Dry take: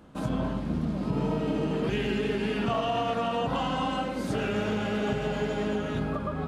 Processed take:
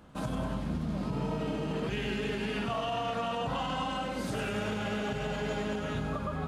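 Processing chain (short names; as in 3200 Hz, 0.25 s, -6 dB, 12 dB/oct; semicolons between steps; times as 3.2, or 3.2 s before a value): bell 320 Hz -5 dB 1.5 oct; limiter -24.5 dBFS, peak gain reduction 6.5 dB; on a send: thin delay 96 ms, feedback 70%, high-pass 5100 Hz, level -4.5 dB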